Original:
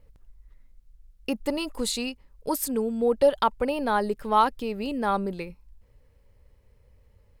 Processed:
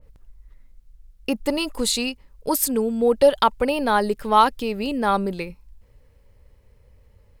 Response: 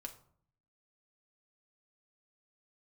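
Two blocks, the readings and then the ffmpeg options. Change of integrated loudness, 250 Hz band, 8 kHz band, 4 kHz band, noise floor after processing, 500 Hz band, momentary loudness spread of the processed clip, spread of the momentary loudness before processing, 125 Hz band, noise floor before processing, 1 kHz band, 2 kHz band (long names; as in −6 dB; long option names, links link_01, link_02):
+5.0 dB, +4.5 dB, +7.5 dB, +7.0 dB, −56 dBFS, +4.5 dB, 12 LU, 12 LU, +4.5 dB, −61 dBFS, +5.0 dB, +6.0 dB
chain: -af "adynamicequalizer=threshold=0.02:dfrequency=1900:dqfactor=0.7:tfrequency=1900:tqfactor=0.7:attack=5:release=100:ratio=0.375:range=2:mode=boostabove:tftype=highshelf,volume=4.5dB"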